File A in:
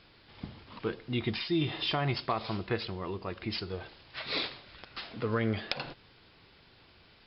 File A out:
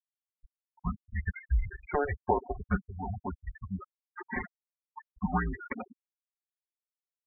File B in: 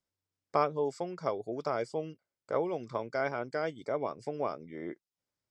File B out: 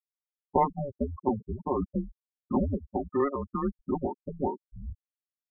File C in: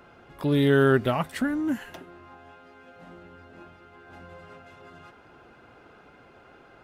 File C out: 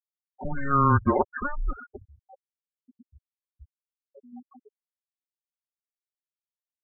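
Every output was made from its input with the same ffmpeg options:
-filter_complex "[0:a]aecho=1:1:5.9:0.84,highpass=f=350:t=q:w=0.5412,highpass=f=350:t=q:w=1.307,lowpass=f=2.3k:t=q:w=0.5176,lowpass=f=2.3k:t=q:w=0.7071,lowpass=f=2.3k:t=q:w=1.932,afreqshift=-280,asplit=2[a][b];[b]aeval=exprs='sgn(val(0))*max(abs(val(0))-0.00211,0)':c=same,volume=-9dB[c];[a][c]amix=inputs=2:normalize=0,afftfilt=real='re*gte(hypot(re,im),0.0562)':imag='im*gte(hypot(re,im),0.0562)':win_size=1024:overlap=0.75"

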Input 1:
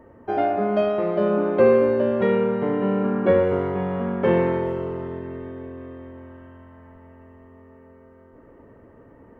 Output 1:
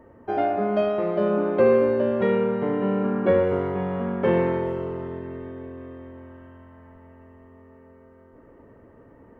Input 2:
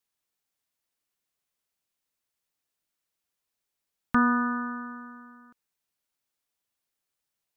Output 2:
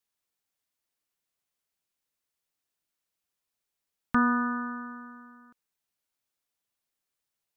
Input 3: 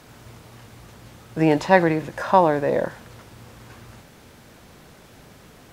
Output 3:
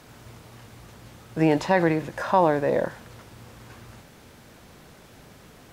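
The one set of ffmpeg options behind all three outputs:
-af "alimiter=level_in=6dB:limit=-1dB:release=50:level=0:latency=1,volume=-7.5dB"

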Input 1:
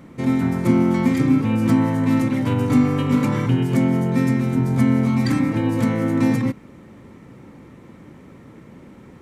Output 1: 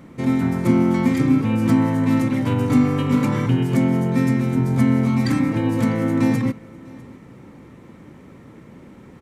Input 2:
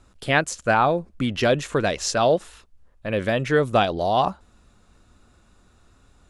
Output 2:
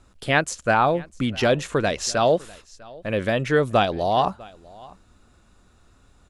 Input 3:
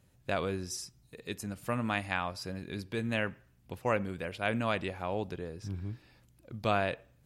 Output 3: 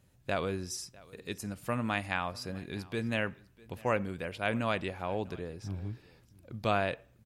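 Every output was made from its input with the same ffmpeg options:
-af "aecho=1:1:649:0.0708"

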